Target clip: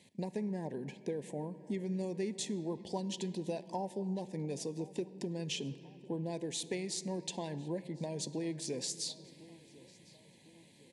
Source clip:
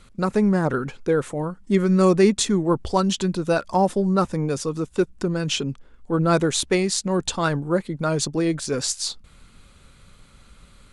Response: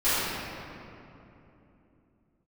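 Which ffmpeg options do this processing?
-filter_complex "[0:a]highpass=f=130:w=0.5412,highpass=f=130:w=1.3066,acompressor=threshold=-28dB:ratio=5,asuperstop=centerf=1300:order=8:qfactor=1.8,asplit=2[a][b];[b]adelay=1053,lowpass=f=3.9k:p=1,volume=-20.5dB,asplit=2[c][d];[d]adelay=1053,lowpass=f=3.9k:p=1,volume=0.52,asplit=2[e][f];[f]adelay=1053,lowpass=f=3.9k:p=1,volume=0.52,asplit=2[g][h];[h]adelay=1053,lowpass=f=3.9k:p=1,volume=0.52[i];[a][c][e][g][i]amix=inputs=5:normalize=0,asplit=2[j][k];[1:a]atrim=start_sample=2205[l];[k][l]afir=irnorm=-1:irlink=0,volume=-30.5dB[m];[j][m]amix=inputs=2:normalize=0,volume=-7.5dB"

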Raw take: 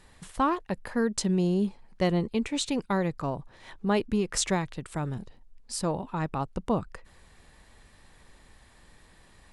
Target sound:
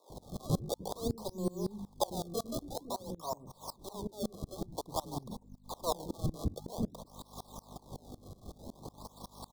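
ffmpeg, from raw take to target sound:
-filter_complex "[0:a]aeval=exprs='if(lt(val(0),0),0.447*val(0),val(0))':c=same,bass=f=250:g=-4,treble=f=4k:g=2,bandreject=f=50:t=h:w=6,bandreject=f=100:t=h:w=6,bandreject=f=150:t=h:w=6,bandreject=f=200:t=h:w=6,bandreject=f=250:t=h:w=6,acompressor=threshold=-43dB:ratio=4,aeval=exprs='val(0)+0.00178*(sin(2*PI*50*n/s)+sin(2*PI*2*50*n/s)/2+sin(2*PI*3*50*n/s)/3+sin(2*PI*4*50*n/s)/4+sin(2*PI*5*50*n/s)/5)':c=same,asplit=2[a][b];[b]highpass=f=720:p=1,volume=23dB,asoftclip=type=tanh:threshold=-22dB[c];[a][c]amix=inputs=2:normalize=0,lowpass=f=1.4k:p=1,volume=-6dB,asplit=3[d][e][f];[d]afade=t=out:st=2.57:d=0.02[g];[e]flanger=delay=8.3:depth=4.9:regen=-45:speed=1.8:shape=triangular,afade=t=in:st=2.57:d=0.02,afade=t=out:st=4.75:d=0.02[h];[f]afade=t=in:st=4.75:d=0.02[i];[g][h][i]amix=inputs=3:normalize=0,acrusher=samples=27:mix=1:aa=0.000001:lfo=1:lforange=43.2:lforate=0.51,asuperstop=centerf=2000:order=20:qfactor=0.89,acrossover=split=380[j][k];[j]adelay=100[l];[l][k]amix=inputs=2:normalize=0,aeval=exprs='val(0)*pow(10,-25*if(lt(mod(-5.4*n/s,1),2*abs(-5.4)/1000),1-mod(-5.4*n/s,1)/(2*abs(-5.4)/1000),(mod(-5.4*n/s,1)-2*abs(-5.4)/1000)/(1-2*abs(-5.4)/1000))/20)':c=same,volume=9.5dB"

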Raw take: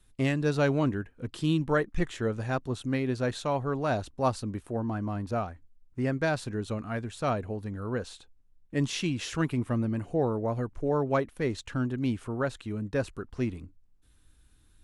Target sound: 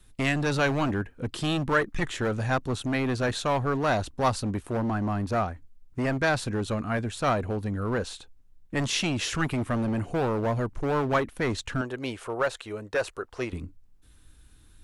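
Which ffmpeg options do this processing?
-filter_complex "[0:a]asettb=1/sr,asplit=3[a][b][c];[a]atrim=end=11.814[d];[b]atrim=start=11.81:end=13.53,asetpts=PTS-STARTPTS,afade=t=in:d=0.004:c=qsin,afade=t=out:st=1.716:d=0.004:c=qsin,lowshelf=f=340:t=q:w=1.5:g=-13[e];[c]atrim=start=13.526[f];[d][e]acrossfade=d=0.004:c1=hsin:c2=qsin[g];[g][f]acrossfade=d=0.004:c1=qsin:c2=hsin,acrossover=split=900[h][i];[h]asoftclip=type=hard:threshold=-31.5dB[j];[j][i]amix=inputs=2:normalize=0,volume=6.5dB"

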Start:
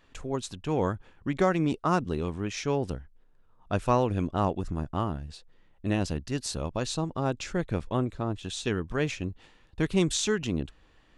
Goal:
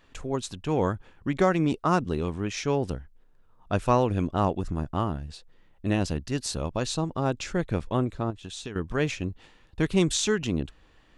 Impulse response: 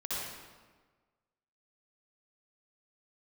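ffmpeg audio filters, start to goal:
-filter_complex "[0:a]asettb=1/sr,asplit=3[a][b][c];[a]atrim=end=8.304[d];[b]atrim=start=8.3:end=8.76,asetpts=PTS-STARTPTS,afade=t=in:d=0.004:c=qsin,afade=t=out:st=0.456:d=0.004:c=qsin,acompressor=threshold=-37dB:ratio=6[e];[c]atrim=start=8.756[f];[d][e]acrossfade=d=0.004:c1=hsin:c2=qsin[g];[g][f]acrossfade=d=0.004:c1=qsin:c2=hsin,volume=2dB"

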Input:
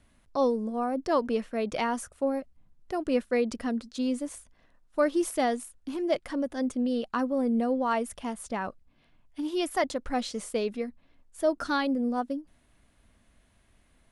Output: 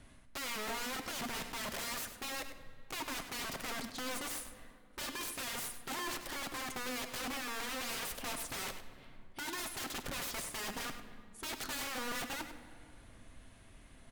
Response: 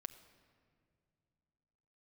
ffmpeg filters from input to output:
-filter_complex "[0:a]areverse,acompressor=threshold=-37dB:ratio=6,areverse,aeval=exprs='(mod(112*val(0)+1,2)-1)/112':c=same,asplit=2[a][b];[b]adelay=99.13,volume=-10dB,highshelf=f=4k:g=-2.23[c];[a][c]amix=inputs=2:normalize=0[d];[1:a]atrim=start_sample=2205,asetrate=34839,aresample=44100[e];[d][e]afir=irnorm=-1:irlink=0,volume=9dB"

